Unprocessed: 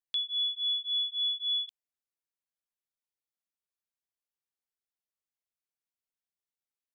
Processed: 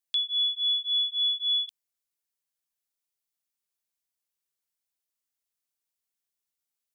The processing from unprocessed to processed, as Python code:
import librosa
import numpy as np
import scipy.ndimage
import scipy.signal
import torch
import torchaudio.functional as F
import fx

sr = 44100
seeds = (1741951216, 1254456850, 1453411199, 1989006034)

y = fx.high_shelf(x, sr, hz=3600.0, db=9.0)